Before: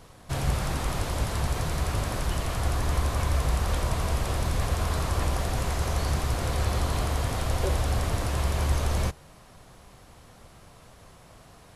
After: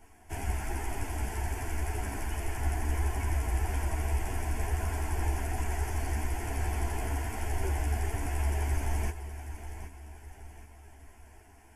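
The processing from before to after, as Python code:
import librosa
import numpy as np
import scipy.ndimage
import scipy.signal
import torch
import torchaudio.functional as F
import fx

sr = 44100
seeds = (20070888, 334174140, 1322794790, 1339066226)

y = fx.fixed_phaser(x, sr, hz=800.0, stages=8)
y = fx.echo_feedback(y, sr, ms=771, feedback_pct=44, wet_db=-11.5)
y = fx.ensemble(y, sr)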